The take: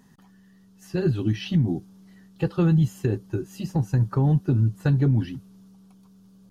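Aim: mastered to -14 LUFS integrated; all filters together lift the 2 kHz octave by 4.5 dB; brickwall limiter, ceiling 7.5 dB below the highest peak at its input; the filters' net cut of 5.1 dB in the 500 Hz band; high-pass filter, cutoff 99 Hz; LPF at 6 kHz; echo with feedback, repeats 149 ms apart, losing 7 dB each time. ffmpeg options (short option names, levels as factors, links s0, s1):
-af "highpass=99,lowpass=6000,equalizer=f=500:t=o:g=-8,equalizer=f=2000:t=o:g=7,alimiter=limit=0.106:level=0:latency=1,aecho=1:1:149|298|447|596|745:0.447|0.201|0.0905|0.0407|0.0183,volume=5.31"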